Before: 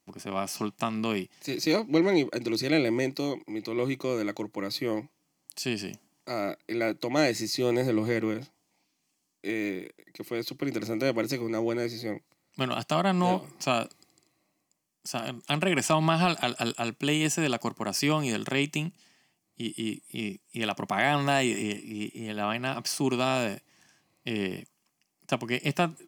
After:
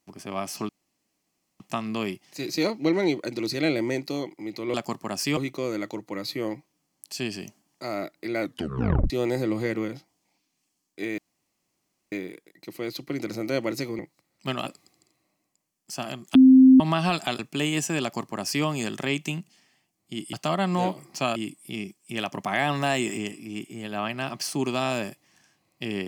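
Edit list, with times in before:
0.69 s: insert room tone 0.91 s
6.87 s: tape stop 0.69 s
9.64 s: insert room tone 0.94 s
11.51–12.12 s: delete
12.79–13.82 s: move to 19.81 s
15.51–15.96 s: bleep 261 Hz -9 dBFS
16.55–16.87 s: delete
17.50–18.13 s: copy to 3.83 s

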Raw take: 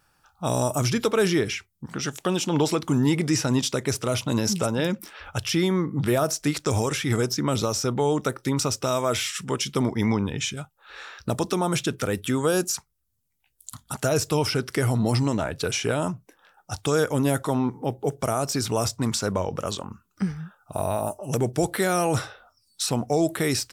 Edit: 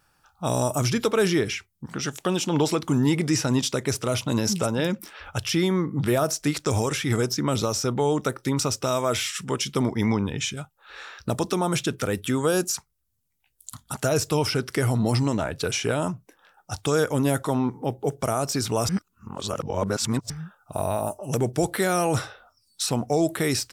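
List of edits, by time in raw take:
18.89–20.30 s: reverse

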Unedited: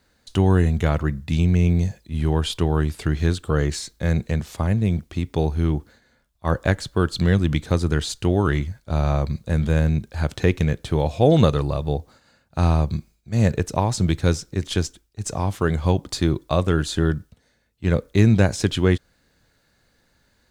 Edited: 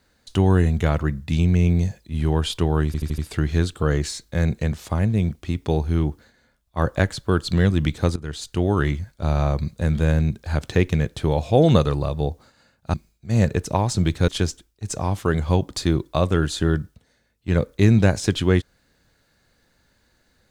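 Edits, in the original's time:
2.86 s: stutter 0.08 s, 5 plays
7.84–8.60 s: fade in equal-power, from -18.5 dB
12.62–12.97 s: delete
14.31–14.64 s: delete

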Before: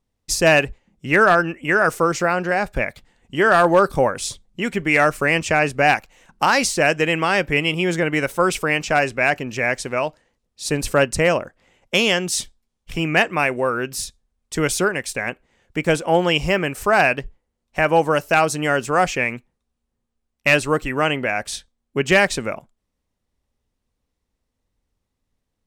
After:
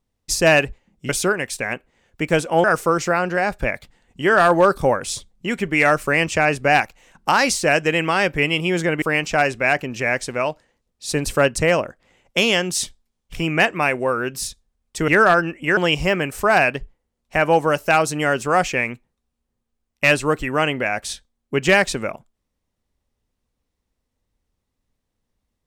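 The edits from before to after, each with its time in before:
1.09–1.78 s: swap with 14.65–16.20 s
8.16–8.59 s: delete

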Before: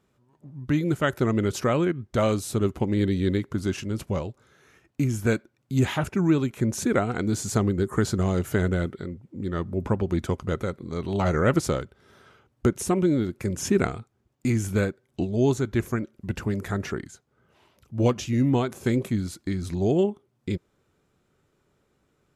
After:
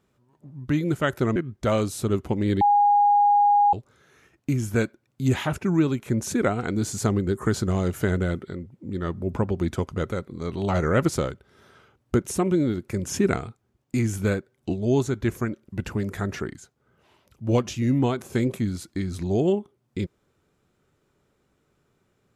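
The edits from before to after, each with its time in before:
1.36–1.87 s: delete
3.12–4.24 s: bleep 820 Hz -14.5 dBFS

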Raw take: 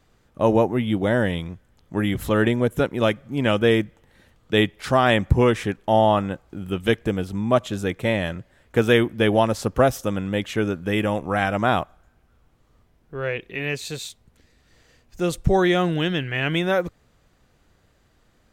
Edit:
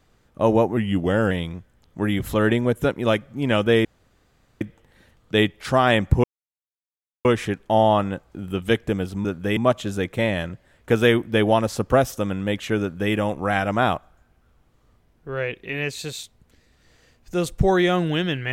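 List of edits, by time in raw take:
0.77–1.26 s: speed 91%
3.80 s: insert room tone 0.76 s
5.43 s: insert silence 1.01 s
10.67–10.99 s: copy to 7.43 s

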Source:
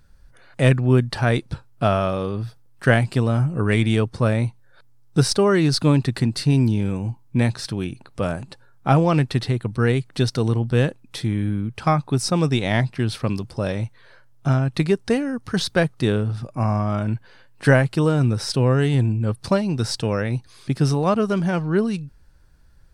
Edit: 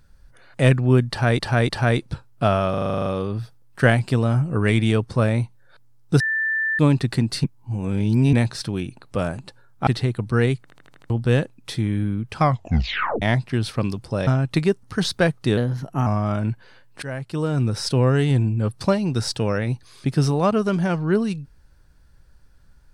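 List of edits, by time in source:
1.09–1.39 s: loop, 3 plays
2.10 s: stutter 0.04 s, 10 plays
5.24–5.83 s: bleep 1.77 kHz -19.5 dBFS
6.48–7.37 s: reverse
8.91–9.33 s: delete
10.08 s: stutter in place 0.08 s, 6 plays
11.88 s: tape stop 0.80 s
13.73–14.50 s: delete
15.06–15.39 s: delete
16.13–16.70 s: speed 115%
17.66–18.44 s: fade in, from -23 dB

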